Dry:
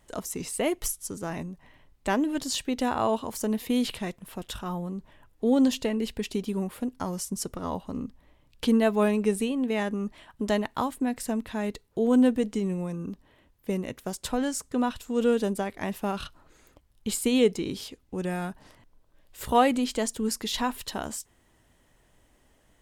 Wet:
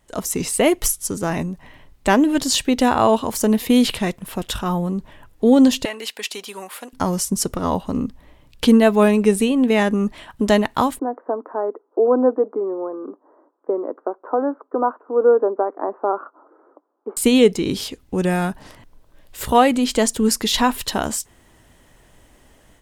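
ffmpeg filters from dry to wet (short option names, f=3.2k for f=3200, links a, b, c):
-filter_complex "[0:a]asettb=1/sr,asplit=3[a][b][c];[a]atrim=end=5.854[d];[b]atrim=start=5.85:end=6.93,asetpts=PTS-STARTPTS,afade=t=in:d=0.004:c=qsin,afade=t=out:st=1.076:d=0.004:c=qsin,highpass=870[e];[c]atrim=start=6.926[f];[d][e]acrossfade=d=0.004:c1=hsin:c2=qsin[g];[g][f]acrossfade=d=0.004:c1=qsin:c2=hsin,asettb=1/sr,asplit=3[h][i][j];[h]atrim=end=10.994[k];[i]atrim=start=10.99:end=17.17,asetpts=PTS-STARTPTS,afade=t=in:d=0.004:c=qsin,afade=t=out:st=6.176:d=0.004:c=qsin,asuperpass=centerf=630:order=12:qfactor=0.6[l];[j]atrim=start=17.166[m];[k][l]acrossfade=d=0.004:c1=hsin:c2=qsin[n];[n][m]acrossfade=d=0.004:c1=qsin:c2=hsin,dynaudnorm=f=110:g=3:m=11dB"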